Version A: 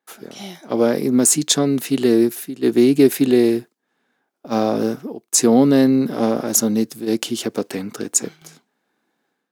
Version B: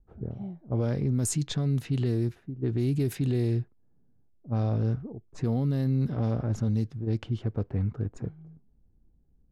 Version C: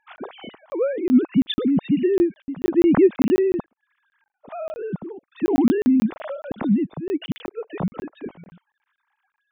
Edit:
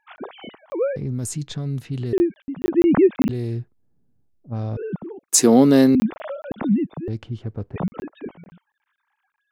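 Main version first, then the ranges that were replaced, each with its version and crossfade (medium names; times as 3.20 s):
C
0.96–2.13 s: from B
3.29–4.77 s: from B
5.29–5.95 s: from A
7.08–7.76 s: from B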